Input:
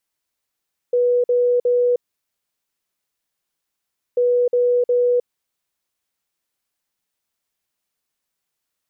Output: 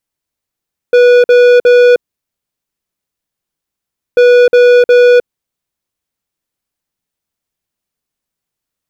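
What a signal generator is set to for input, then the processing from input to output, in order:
beep pattern sine 489 Hz, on 0.31 s, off 0.05 s, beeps 3, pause 2.21 s, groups 2, -13.5 dBFS
low shelf 380 Hz +9.5 dB; in parallel at +1 dB: level quantiser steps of 14 dB; on the sum: sample leveller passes 3

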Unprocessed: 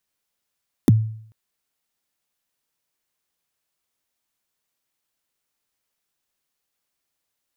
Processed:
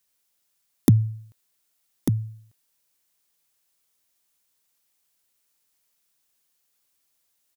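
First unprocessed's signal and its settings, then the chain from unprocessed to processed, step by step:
kick drum length 0.44 s, from 360 Hz, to 110 Hz, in 23 ms, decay 0.61 s, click on, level -7 dB
high shelf 4200 Hz +8.5 dB; on a send: echo 1.195 s -7 dB

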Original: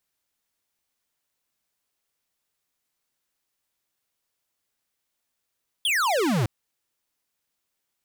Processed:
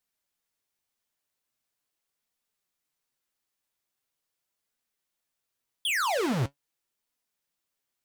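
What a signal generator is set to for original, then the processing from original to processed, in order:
laser zap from 3500 Hz, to 99 Hz, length 0.61 s square, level -22.5 dB
flange 0.42 Hz, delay 3.9 ms, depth 6 ms, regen +63%; Doppler distortion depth 0.57 ms

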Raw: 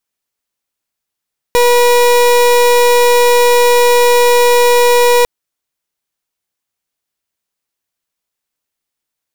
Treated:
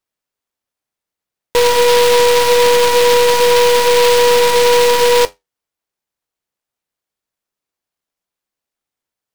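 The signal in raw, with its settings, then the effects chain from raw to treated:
pulse 484 Hz, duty 31% -8.5 dBFS 3.70 s
bell 570 Hz +3.5 dB 1.8 oct; flange 0.24 Hz, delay 5.7 ms, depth 9.3 ms, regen -66%; noise-modulated delay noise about 2800 Hz, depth 0.083 ms

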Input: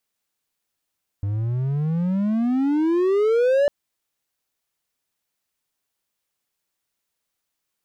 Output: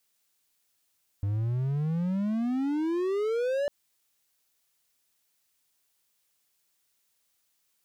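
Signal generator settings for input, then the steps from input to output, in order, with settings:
gliding synth tone triangle, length 2.45 s, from 98 Hz, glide +31 st, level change +7 dB, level -12.5 dB
limiter -23.5 dBFS; high shelf 2500 Hz +7.5 dB

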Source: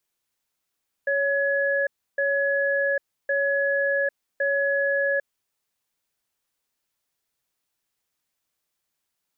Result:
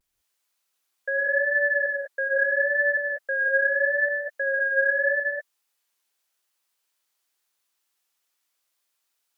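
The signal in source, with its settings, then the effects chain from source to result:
cadence 558 Hz, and 1690 Hz, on 0.80 s, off 0.31 s, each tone -23 dBFS 4.29 s
HPF 750 Hz 6 dB/oct; vibrato 0.81 Hz 57 cents; non-linear reverb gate 0.22 s rising, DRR -1.5 dB

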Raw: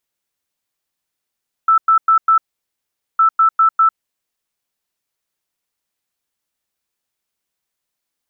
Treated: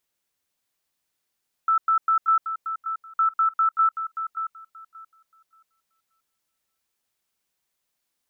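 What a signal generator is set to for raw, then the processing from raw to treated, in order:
beep pattern sine 1320 Hz, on 0.10 s, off 0.10 s, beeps 4, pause 0.81 s, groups 2, -8 dBFS
limiter -16.5 dBFS; on a send: thinning echo 0.579 s, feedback 23%, high-pass 1000 Hz, level -7 dB

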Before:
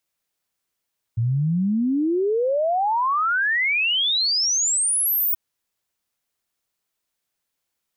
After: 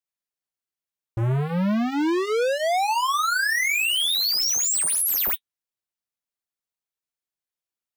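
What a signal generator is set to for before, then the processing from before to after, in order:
log sweep 110 Hz -> 16000 Hz 4.18 s -18 dBFS
sample leveller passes 5; flange 0.35 Hz, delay 7.7 ms, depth 8.4 ms, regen -39%

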